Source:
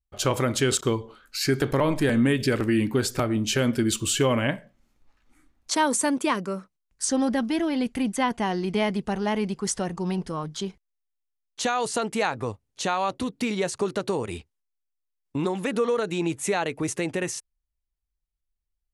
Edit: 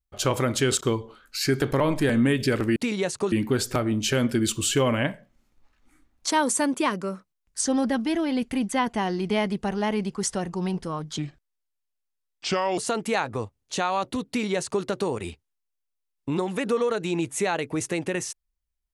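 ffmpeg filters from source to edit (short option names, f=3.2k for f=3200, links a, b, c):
-filter_complex "[0:a]asplit=5[a][b][c][d][e];[a]atrim=end=2.762[f];[b]atrim=start=13.348:end=13.912[g];[c]atrim=start=2.758:end=10.624[h];[d]atrim=start=10.62:end=11.85,asetpts=PTS-STARTPTS,asetrate=33957,aresample=44100,atrim=end_sample=70445,asetpts=PTS-STARTPTS[i];[e]atrim=start=11.846[j];[f][g]acrossfade=d=0.004:c1=hsin:c2=hsin[k];[k][h]acrossfade=d=0.004:c1=hsin:c2=hsin[l];[l][i]acrossfade=d=0.004:c1=hsin:c2=hsin[m];[m][j]acrossfade=d=0.004:c1=hsin:c2=hsin"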